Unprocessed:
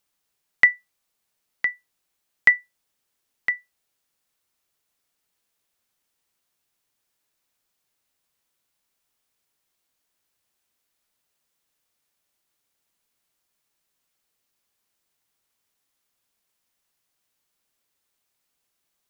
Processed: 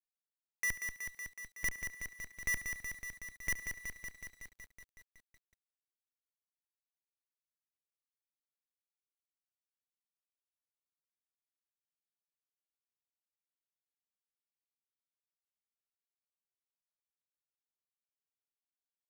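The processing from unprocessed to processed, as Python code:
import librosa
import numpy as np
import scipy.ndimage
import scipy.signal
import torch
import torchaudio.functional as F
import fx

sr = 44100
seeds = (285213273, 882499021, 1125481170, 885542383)

p1 = fx.envelope_sharpen(x, sr, power=2.0)
p2 = fx.over_compress(p1, sr, threshold_db=-19.0, ratio=-1.0)
p3 = p1 + (p2 * 10.0 ** (0.0 / 20.0))
p4 = scipy.signal.sosfilt(scipy.signal.cheby1(6, 6, 160.0, 'highpass', fs=sr, output='sos'), p3)
p5 = fx.schmitt(p4, sr, flips_db=-24.0)
p6 = p5 + fx.echo_thinned(p5, sr, ms=71, feedback_pct=54, hz=210.0, wet_db=-15, dry=0)
p7 = fx.echo_crushed(p6, sr, ms=186, feedback_pct=80, bits=11, wet_db=-6.0)
y = p7 * 10.0 ** (4.0 / 20.0)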